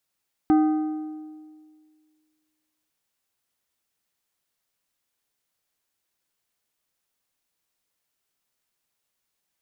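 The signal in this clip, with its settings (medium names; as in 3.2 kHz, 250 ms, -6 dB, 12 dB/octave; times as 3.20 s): metal hit plate, length 2.40 s, lowest mode 309 Hz, modes 5, decay 1.91 s, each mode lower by 9.5 dB, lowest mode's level -13.5 dB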